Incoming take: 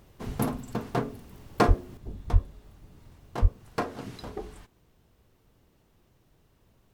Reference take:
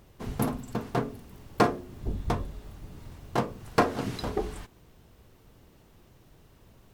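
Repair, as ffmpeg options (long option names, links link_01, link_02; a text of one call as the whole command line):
ffmpeg -i in.wav -filter_complex "[0:a]asplit=3[link_01][link_02][link_03];[link_01]afade=type=out:start_time=1.67:duration=0.02[link_04];[link_02]highpass=frequency=140:width=0.5412,highpass=frequency=140:width=1.3066,afade=type=in:start_time=1.67:duration=0.02,afade=type=out:start_time=1.79:duration=0.02[link_05];[link_03]afade=type=in:start_time=1.79:duration=0.02[link_06];[link_04][link_05][link_06]amix=inputs=3:normalize=0,asplit=3[link_07][link_08][link_09];[link_07]afade=type=out:start_time=2.32:duration=0.02[link_10];[link_08]highpass=frequency=140:width=0.5412,highpass=frequency=140:width=1.3066,afade=type=in:start_time=2.32:duration=0.02,afade=type=out:start_time=2.44:duration=0.02[link_11];[link_09]afade=type=in:start_time=2.44:duration=0.02[link_12];[link_10][link_11][link_12]amix=inputs=3:normalize=0,asplit=3[link_13][link_14][link_15];[link_13]afade=type=out:start_time=3.41:duration=0.02[link_16];[link_14]highpass=frequency=140:width=0.5412,highpass=frequency=140:width=1.3066,afade=type=in:start_time=3.41:duration=0.02,afade=type=out:start_time=3.53:duration=0.02[link_17];[link_15]afade=type=in:start_time=3.53:duration=0.02[link_18];[link_16][link_17][link_18]amix=inputs=3:normalize=0,asetnsamples=nb_out_samples=441:pad=0,asendcmd='1.97 volume volume 7.5dB',volume=0dB" out.wav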